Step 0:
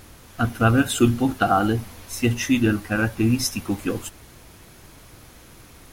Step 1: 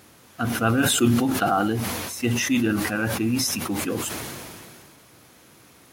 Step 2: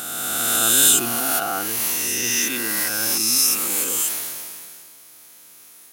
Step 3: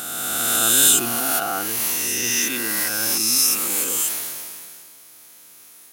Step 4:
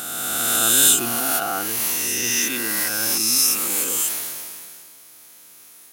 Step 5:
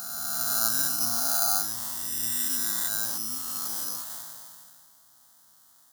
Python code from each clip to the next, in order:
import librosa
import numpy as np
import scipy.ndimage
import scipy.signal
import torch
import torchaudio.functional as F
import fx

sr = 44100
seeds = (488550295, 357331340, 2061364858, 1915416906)

y1 = scipy.signal.sosfilt(scipy.signal.butter(2, 140.0, 'highpass', fs=sr, output='sos'), x)
y1 = fx.sustainer(y1, sr, db_per_s=25.0)
y1 = F.gain(torch.from_numpy(y1), -3.5).numpy()
y2 = fx.spec_swells(y1, sr, rise_s=2.48)
y2 = fx.riaa(y2, sr, side='recording')
y2 = F.gain(torch.from_numpy(y2), -7.0).numpy()
y3 = fx.mod_noise(y2, sr, seeds[0], snr_db=28)
y4 = fx.end_taper(y3, sr, db_per_s=130.0)
y5 = (np.kron(scipy.signal.resample_poly(y4, 1, 8), np.eye(8)[0]) * 8)[:len(y4)]
y5 = fx.fixed_phaser(y5, sr, hz=1000.0, stages=4)
y5 = F.gain(torch.from_numpy(y5), -7.0).numpy()